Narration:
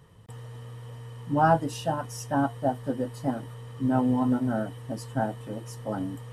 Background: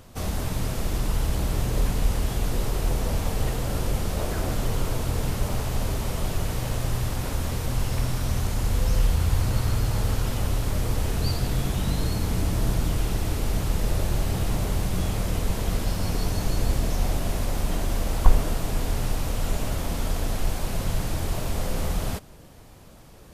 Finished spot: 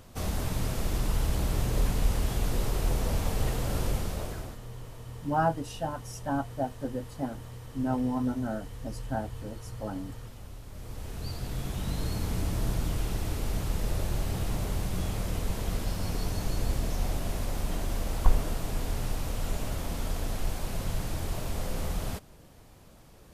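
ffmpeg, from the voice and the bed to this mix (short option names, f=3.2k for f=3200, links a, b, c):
-filter_complex "[0:a]adelay=3950,volume=-5dB[a];[1:a]volume=11dB,afade=t=out:st=3.86:d=0.73:silence=0.149624,afade=t=in:st=10.69:d=1.49:silence=0.199526[b];[a][b]amix=inputs=2:normalize=0"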